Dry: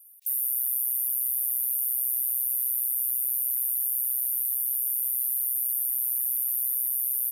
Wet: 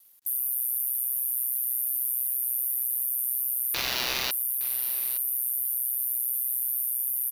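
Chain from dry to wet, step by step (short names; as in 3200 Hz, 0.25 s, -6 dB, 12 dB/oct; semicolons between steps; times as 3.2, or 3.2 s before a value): crossover distortion -58.5 dBFS; vibrato 2.7 Hz 25 cents; 3.74–4.31 sample-rate reducer 8400 Hz, jitter 0%; echo 0.865 s -17.5 dB; gain -1 dB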